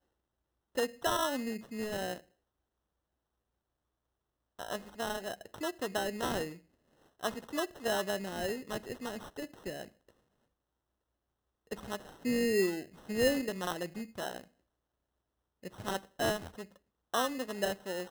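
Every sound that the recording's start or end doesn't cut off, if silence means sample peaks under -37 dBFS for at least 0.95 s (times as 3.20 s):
4.59–9.81 s
11.72–14.38 s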